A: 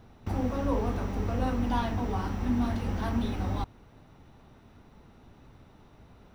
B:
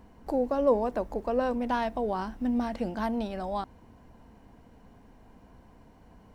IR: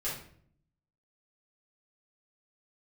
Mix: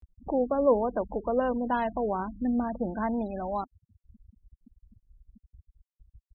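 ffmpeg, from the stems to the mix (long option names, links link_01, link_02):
-filter_complex "[0:a]volume=-15.5dB,asplit=2[link_01][link_02];[link_02]volume=-12dB[link_03];[1:a]volume=-1,adelay=0.4,volume=1dB,asplit=2[link_04][link_05];[link_05]apad=whole_len=279663[link_06];[link_01][link_06]sidechaincompress=threshold=-38dB:ratio=6:attack=29:release=121[link_07];[2:a]atrim=start_sample=2205[link_08];[link_03][link_08]afir=irnorm=-1:irlink=0[link_09];[link_07][link_04][link_09]amix=inputs=3:normalize=0,afftfilt=real='re*gte(hypot(re,im),0.0251)':imag='im*gte(hypot(re,im),0.0251)':win_size=1024:overlap=0.75,highpass=frequency=42:poles=1,acompressor=mode=upward:threshold=-43dB:ratio=2.5"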